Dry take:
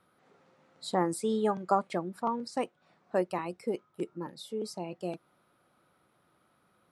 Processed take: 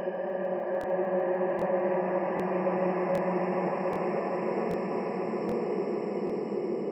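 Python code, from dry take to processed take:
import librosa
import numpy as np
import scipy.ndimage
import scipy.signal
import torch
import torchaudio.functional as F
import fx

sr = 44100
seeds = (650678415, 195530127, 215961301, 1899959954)

y = fx.spec_trails(x, sr, decay_s=0.68)
y = scipy.signal.sosfilt(scipy.signal.butter(2, 7900.0, 'lowpass', fs=sr, output='sos'), y)
y = fx.spec_gate(y, sr, threshold_db=-25, keep='strong')
y = fx.paulstretch(y, sr, seeds[0], factor=7.8, window_s=1.0, from_s=3.0)
y = fx.echo_swell(y, sr, ms=150, loudest=5, wet_db=-13.5)
y = fx.buffer_crackle(y, sr, first_s=0.79, period_s=0.78, block=1024, kind='repeat')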